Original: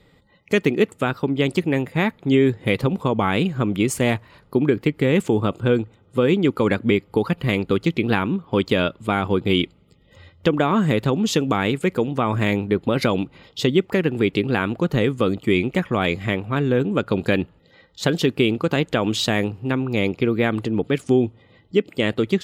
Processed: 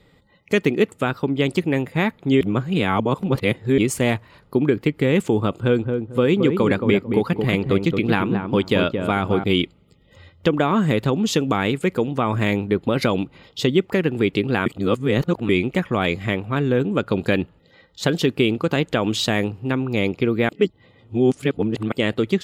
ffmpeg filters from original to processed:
ffmpeg -i in.wav -filter_complex "[0:a]asettb=1/sr,asplit=3[link_01][link_02][link_03];[link_01]atrim=end=5.554[link_04];[link_02]atrim=start=5.55:end=9.44,asetpts=PTS-STARTPTS,afade=type=in:duration=0.004:curve=qsin,afade=type=out:start_time=3.886:duration=0.004:curve=qsin,asplit=2[link_05][link_06];[link_06]adelay=223,lowpass=frequency=920:poles=1,volume=-4.5dB,asplit=2[link_07][link_08];[link_08]adelay=223,lowpass=frequency=920:poles=1,volume=0.25,asplit=2[link_09][link_10];[link_10]adelay=223,lowpass=frequency=920:poles=1,volume=0.25[link_11];[link_05][link_07][link_09][link_11]amix=inputs=4:normalize=0,atrim=end_sample=171549[link_12];[link_03]atrim=start=9.436[link_13];[link_04][link_12]acrossfade=duration=0.004:curve1=hsin:curve2=qsin[link_14];[link_14][link_13]acrossfade=duration=0.004:curve1=qsin:curve2=hsin,asplit=7[link_15][link_16][link_17][link_18][link_19][link_20][link_21];[link_15]atrim=end=2.412[link_22];[link_16]atrim=start=2.408:end=3.782,asetpts=PTS-STARTPTS,areverse[link_23];[link_17]atrim=start=3.778:end=14.662[link_24];[link_18]atrim=start=14.658:end=15.492,asetpts=PTS-STARTPTS,areverse[link_25];[link_19]atrim=start=15.488:end=20.492[link_26];[link_20]atrim=start=20.488:end=21.922,asetpts=PTS-STARTPTS,areverse[link_27];[link_21]atrim=start=21.918[link_28];[link_22][link_23]acrossfade=duration=0.004:curve1=hsin:curve2=hsin[link_29];[link_29][link_24]acrossfade=duration=0.004:curve1=hsin:curve2=hsin[link_30];[link_30][link_25]acrossfade=duration=0.004:curve1=hsin:curve2=hsin[link_31];[link_31][link_26]acrossfade=duration=0.004:curve1=hsin:curve2=hsin[link_32];[link_32][link_27]acrossfade=duration=0.004:curve1=hsin:curve2=hsin[link_33];[link_33][link_28]acrossfade=duration=0.004:curve1=hsin:curve2=hsin" out.wav

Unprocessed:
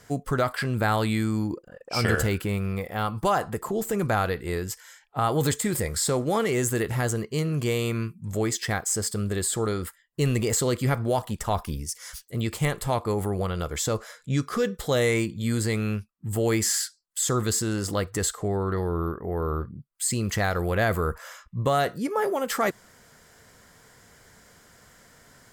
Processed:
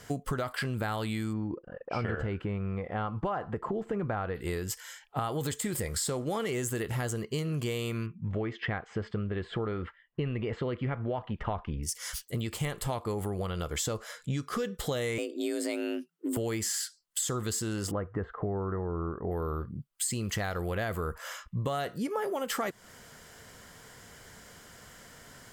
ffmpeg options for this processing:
ffmpeg -i in.wav -filter_complex "[0:a]asplit=3[link_01][link_02][link_03];[link_01]afade=type=out:start_time=1.32:duration=0.02[link_04];[link_02]lowpass=1800,afade=type=in:start_time=1.32:duration=0.02,afade=type=out:start_time=4.34:duration=0.02[link_05];[link_03]afade=type=in:start_time=4.34:duration=0.02[link_06];[link_04][link_05][link_06]amix=inputs=3:normalize=0,asettb=1/sr,asplit=3[link_07][link_08][link_09];[link_07]atrim=end=8.064[link_10];[link_08]atrim=start=8.06:end=11.83,asetpts=PTS-STARTPTS,afade=type=in:duration=0.004:curve=qsin,afade=type=out:start_time=3.766:duration=0.004:curve=qsin,lowpass=frequency=2700:width=0.5412,lowpass=frequency=2700:width=1.3066[link_11];[link_09]atrim=start=11.826[link_12];[link_10][link_11]acrossfade=duration=0.004:curve1=hsin:curve2=qsin[link_13];[link_13][link_12]acrossfade=duration=0.004:curve1=qsin:curve2=hsin,asettb=1/sr,asplit=3[link_14][link_15][link_16];[link_14]atrim=end=15.184[link_17];[link_15]atrim=start=15.18:end=16.37,asetpts=PTS-STARTPTS,afade=type=in:duration=0.004:curve=qsin,afade=type=out:start_time=1.186:duration=0.004:curve=qsin,afreqshift=160[link_18];[link_16]atrim=start=16.366[link_19];[link_17][link_18]acrossfade=duration=0.004:curve1=hsin:curve2=qsin[link_20];[link_20][link_19]acrossfade=duration=0.004:curve1=qsin:curve2=hsin,asettb=1/sr,asplit=3[link_21][link_22][link_23];[link_21]atrim=end=17.914[link_24];[link_22]atrim=start=17.91:end=19.31,asetpts=PTS-STARTPTS,afade=type=in:duration=0.004:curve=qsin,afade=type=out:start_time=1.396:duration=0.004:curve=qsin,lowpass=frequency=1600:width=0.5412,lowpass=frequency=1600:width=1.3066[link_25];[link_23]atrim=start=19.306[link_26];[link_24][link_25]acrossfade=duration=0.004:curve1=hsin:curve2=qsin[link_27];[link_27][link_26]acrossfade=duration=0.004:curve1=qsin:curve2=hsin,equalizer=frequency=3000:width_type=o:width=0.24:gain=5,acompressor=threshold=-32dB:ratio=6,volume=2.5dB" out.wav

